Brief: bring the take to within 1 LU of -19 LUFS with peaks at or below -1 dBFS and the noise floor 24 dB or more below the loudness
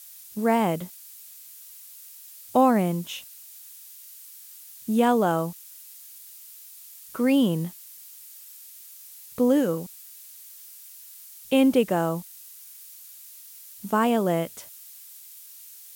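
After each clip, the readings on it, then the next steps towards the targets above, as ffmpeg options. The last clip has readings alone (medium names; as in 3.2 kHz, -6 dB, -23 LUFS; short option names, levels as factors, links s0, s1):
noise floor -46 dBFS; noise floor target -48 dBFS; loudness -24.0 LUFS; peak level -9.0 dBFS; loudness target -19.0 LUFS
-> -af "afftdn=nr=6:nf=-46"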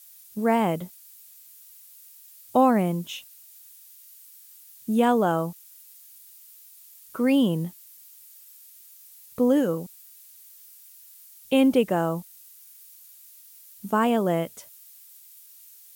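noise floor -50 dBFS; loudness -24.0 LUFS; peak level -9.0 dBFS; loudness target -19.0 LUFS
-> -af "volume=1.78"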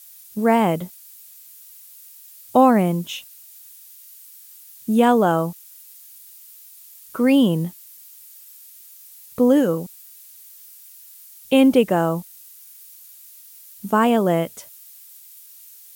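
loudness -19.0 LUFS; peak level -4.0 dBFS; noise floor -45 dBFS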